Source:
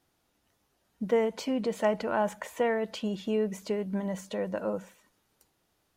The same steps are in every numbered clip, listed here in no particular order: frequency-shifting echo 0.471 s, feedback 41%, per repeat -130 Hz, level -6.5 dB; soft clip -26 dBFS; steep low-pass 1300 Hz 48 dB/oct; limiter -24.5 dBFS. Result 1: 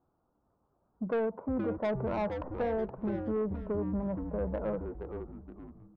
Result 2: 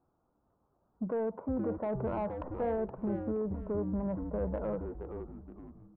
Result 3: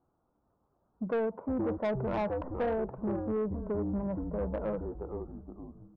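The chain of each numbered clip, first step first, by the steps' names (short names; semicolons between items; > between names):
steep low-pass > soft clip > frequency-shifting echo > limiter; steep low-pass > limiter > soft clip > frequency-shifting echo; steep low-pass > frequency-shifting echo > soft clip > limiter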